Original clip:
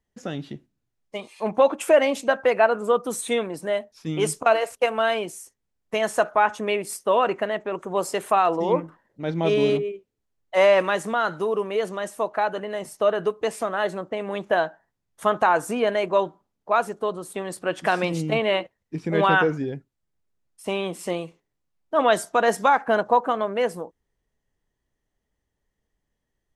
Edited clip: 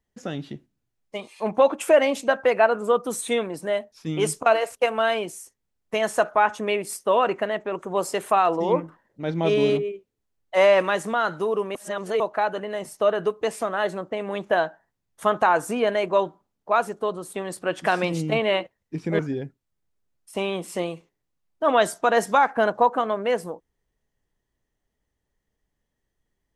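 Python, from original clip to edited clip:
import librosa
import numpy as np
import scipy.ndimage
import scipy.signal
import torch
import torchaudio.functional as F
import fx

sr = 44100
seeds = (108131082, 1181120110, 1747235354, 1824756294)

y = fx.edit(x, sr, fx.reverse_span(start_s=11.75, length_s=0.45),
    fx.cut(start_s=19.19, length_s=0.31), tone=tone)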